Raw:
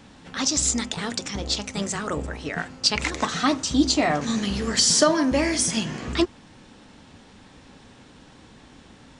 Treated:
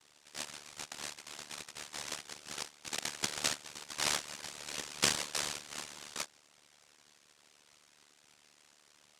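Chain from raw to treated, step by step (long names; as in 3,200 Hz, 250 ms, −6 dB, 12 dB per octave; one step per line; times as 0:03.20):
single-sideband voice off tune −320 Hz 580–3,300 Hz
cochlear-implant simulation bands 1
amplitude modulation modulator 74 Hz, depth 95%
level −5 dB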